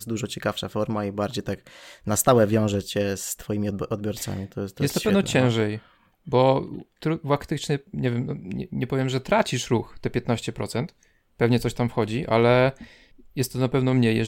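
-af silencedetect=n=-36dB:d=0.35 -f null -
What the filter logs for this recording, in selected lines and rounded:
silence_start: 5.79
silence_end: 6.27 | silence_duration: 0.49
silence_start: 10.90
silence_end: 11.40 | silence_duration: 0.50
silence_start: 12.85
silence_end: 13.37 | silence_duration: 0.52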